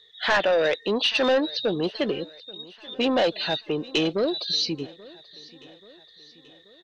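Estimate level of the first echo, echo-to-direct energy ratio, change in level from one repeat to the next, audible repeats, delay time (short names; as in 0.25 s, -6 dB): -22.0 dB, -20.5 dB, -5.5 dB, 3, 0.832 s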